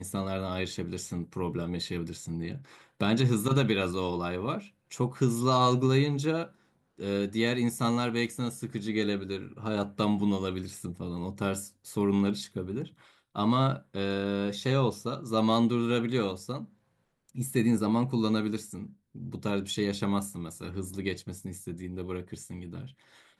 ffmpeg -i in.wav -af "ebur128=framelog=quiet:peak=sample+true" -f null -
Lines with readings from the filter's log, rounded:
Integrated loudness:
  I:         -30.1 LUFS
  Threshold: -40.6 LUFS
Loudness range:
  LRA:         6.2 LU
  Threshold: -50.2 LUFS
  LRA low:   -34.1 LUFS
  LRA high:  -27.9 LUFS
Sample peak:
  Peak:      -12.3 dBFS
True peak:
  Peak:      -12.3 dBFS